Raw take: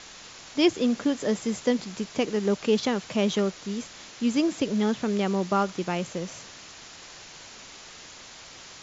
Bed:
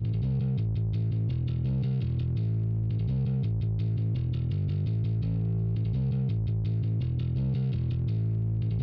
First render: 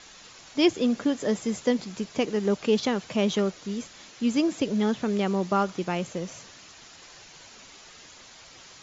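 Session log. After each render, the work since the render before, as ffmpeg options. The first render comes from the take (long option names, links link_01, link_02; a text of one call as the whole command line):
ffmpeg -i in.wav -af "afftdn=noise_reduction=6:noise_floor=-46" out.wav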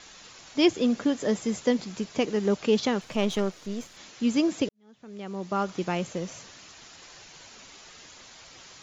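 ffmpeg -i in.wav -filter_complex "[0:a]asettb=1/sr,asplit=3[link_01][link_02][link_03];[link_01]atrim=end=3.014[link_04];[link_02]atrim=start=3.01:end=3.97,asetpts=PTS-STARTPTS,afade=type=in:duration=0.004:curve=qsin,afade=type=out:start_time=0.956:duration=0.004:curve=qsin,aeval=exprs='if(lt(val(0),0),0.447*val(0),val(0))':channel_layout=same[link_05];[link_03]atrim=start=3.966[link_06];[link_04][link_05]acrossfade=duration=0.004:curve1=hsin:curve2=qsin[link_07];[link_07][link_06]acrossfade=duration=0.004:curve1=qsin:curve2=hsin,asplit=2[link_08][link_09];[link_08]atrim=end=4.69,asetpts=PTS-STARTPTS,afade=type=out:start_time=4.686:duration=0.004:curve=hsin[link_10];[link_09]atrim=start=4.69,asetpts=PTS-STARTPTS,afade=type=in:duration=1.1:curve=qua[link_11];[link_10][link_11]concat=n=2:v=0:a=1" out.wav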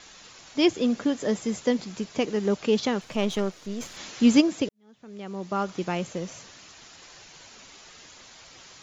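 ffmpeg -i in.wav -filter_complex "[0:a]asplit=3[link_01][link_02][link_03];[link_01]afade=type=out:start_time=3.8:duration=0.02[link_04];[link_02]acontrast=88,afade=type=in:start_time=3.8:duration=0.02,afade=type=out:start_time=4.4:duration=0.02[link_05];[link_03]afade=type=in:start_time=4.4:duration=0.02[link_06];[link_04][link_05][link_06]amix=inputs=3:normalize=0" out.wav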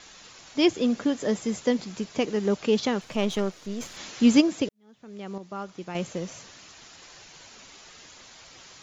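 ffmpeg -i in.wav -filter_complex "[0:a]asplit=3[link_01][link_02][link_03];[link_01]atrim=end=5.382[link_04];[link_02]atrim=start=5.378:end=5.952,asetpts=PTS-STARTPTS,volume=-8dB[link_05];[link_03]atrim=start=5.948[link_06];[link_04][link_05]acrossfade=duration=0.004:curve1=hsin:curve2=hsin[link_07];[link_07][link_06]acrossfade=duration=0.004:curve1=hsin:curve2=hsin" out.wav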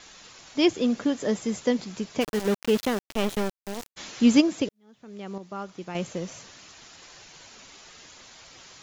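ffmpeg -i in.wav -filter_complex "[0:a]asplit=3[link_01][link_02][link_03];[link_01]afade=type=out:start_time=2.2:duration=0.02[link_04];[link_02]aeval=exprs='val(0)*gte(abs(val(0)),0.0422)':channel_layout=same,afade=type=in:start_time=2.2:duration=0.02,afade=type=out:start_time=3.96:duration=0.02[link_05];[link_03]afade=type=in:start_time=3.96:duration=0.02[link_06];[link_04][link_05][link_06]amix=inputs=3:normalize=0" out.wav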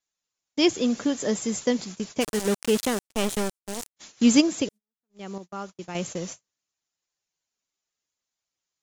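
ffmpeg -i in.wav -af "agate=range=-42dB:threshold=-38dB:ratio=16:detection=peak,equalizer=frequency=8800:width_type=o:width=1.2:gain=11" out.wav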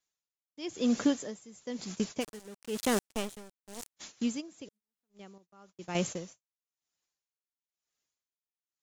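ffmpeg -i in.wav -af "aeval=exprs='val(0)*pow(10,-24*(0.5-0.5*cos(2*PI*1*n/s))/20)':channel_layout=same" out.wav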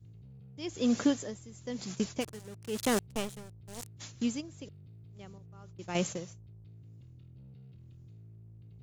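ffmpeg -i in.wav -i bed.wav -filter_complex "[1:a]volume=-24.5dB[link_01];[0:a][link_01]amix=inputs=2:normalize=0" out.wav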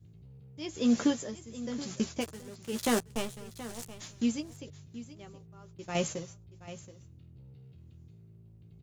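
ffmpeg -i in.wav -filter_complex "[0:a]asplit=2[link_01][link_02];[link_02]adelay=13,volume=-6.5dB[link_03];[link_01][link_03]amix=inputs=2:normalize=0,aecho=1:1:726:0.178" out.wav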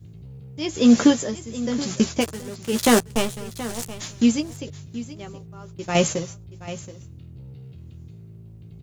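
ffmpeg -i in.wav -af "volume=11.5dB" out.wav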